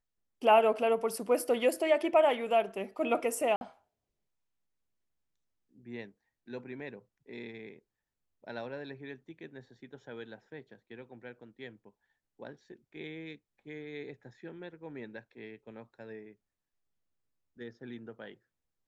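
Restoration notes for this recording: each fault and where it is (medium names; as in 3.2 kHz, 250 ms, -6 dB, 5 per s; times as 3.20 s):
3.56–3.61 s: dropout 51 ms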